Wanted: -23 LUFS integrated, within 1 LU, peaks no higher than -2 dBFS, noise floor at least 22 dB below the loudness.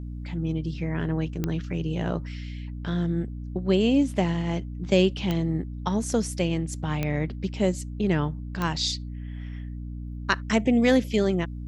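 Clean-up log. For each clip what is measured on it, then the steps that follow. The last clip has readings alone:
clicks 4; hum 60 Hz; harmonics up to 300 Hz; hum level -33 dBFS; loudness -26.5 LUFS; peak -6.5 dBFS; loudness target -23.0 LUFS
-> de-click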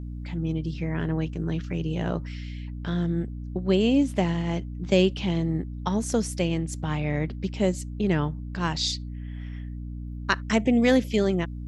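clicks 0; hum 60 Hz; harmonics up to 300 Hz; hum level -33 dBFS
-> de-hum 60 Hz, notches 5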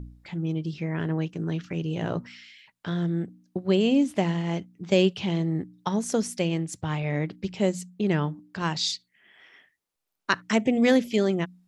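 hum none; loudness -27.0 LUFS; peak -6.5 dBFS; loudness target -23.0 LUFS
-> gain +4 dB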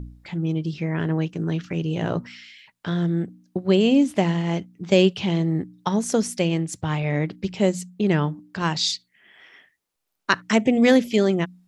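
loudness -23.0 LUFS; peak -2.5 dBFS; noise floor -78 dBFS

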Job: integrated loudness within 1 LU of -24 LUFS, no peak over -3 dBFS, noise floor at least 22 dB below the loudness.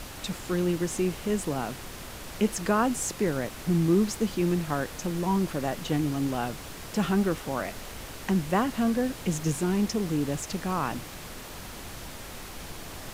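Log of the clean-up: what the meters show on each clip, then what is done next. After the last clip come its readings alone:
noise floor -42 dBFS; noise floor target -51 dBFS; loudness -28.5 LUFS; peak -11.5 dBFS; loudness target -24.0 LUFS
-> noise print and reduce 9 dB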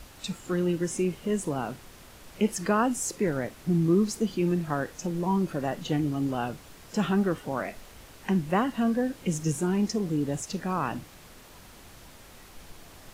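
noise floor -50 dBFS; noise floor target -51 dBFS
-> noise print and reduce 6 dB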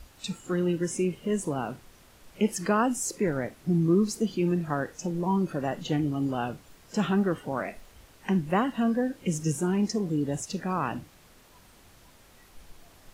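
noise floor -56 dBFS; loudness -28.5 LUFS; peak -11.5 dBFS; loudness target -24.0 LUFS
-> gain +4.5 dB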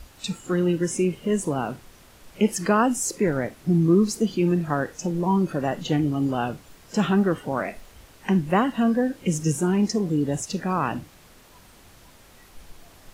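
loudness -24.0 LUFS; peak -7.0 dBFS; noise floor -52 dBFS

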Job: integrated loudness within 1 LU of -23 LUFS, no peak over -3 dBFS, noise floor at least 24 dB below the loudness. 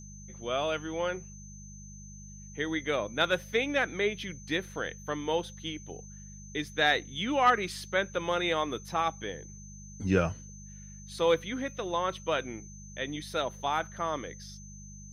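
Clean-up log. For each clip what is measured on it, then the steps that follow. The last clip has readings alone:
hum 50 Hz; harmonics up to 200 Hz; hum level -46 dBFS; steady tone 6200 Hz; tone level -50 dBFS; loudness -31.0 LUFS; peak -11.5 dBFS; loudness target -23.0 LUFS
-> de-hum 50 Hz, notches 4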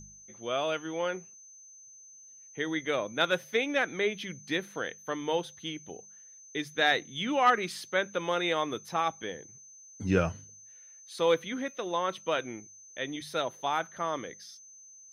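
hum none; steady tone 6200 Hz; tone level -50 dBFS
-> notch 6200 Hz, Q 30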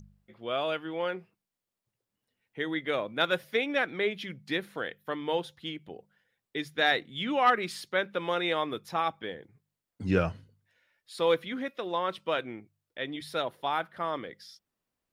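steady tone none; loudness -31.0 LUFS; peak -11.5 dBFS; loudness target -23.0 LUFS
-> gain +8 dB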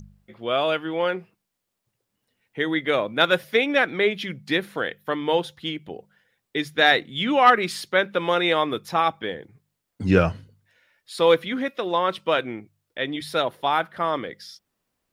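loudness -23.0 LUFS; peak -3.5 dBFS; noise floor -80 dBFS

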